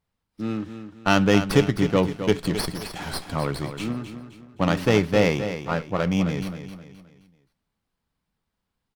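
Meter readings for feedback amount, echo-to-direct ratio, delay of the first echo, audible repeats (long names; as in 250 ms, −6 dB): 38%, −9.5 dB, 262 ms, 3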